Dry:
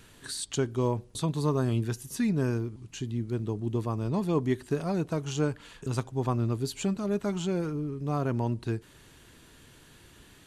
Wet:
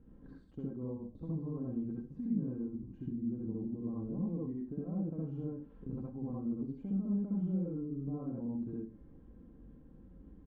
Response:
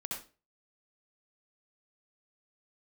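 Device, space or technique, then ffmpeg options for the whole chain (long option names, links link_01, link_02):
television next door: -filter_complex "[0:a]aecho=1:1:3.8:0.49,acompressor=threshold=-36dB:ratio=4,lowpass=380[link_01];[1:a]atrim=start_sample=2205[link_02];[link_01][link_02]afir=irnorm=-1:irlink=0"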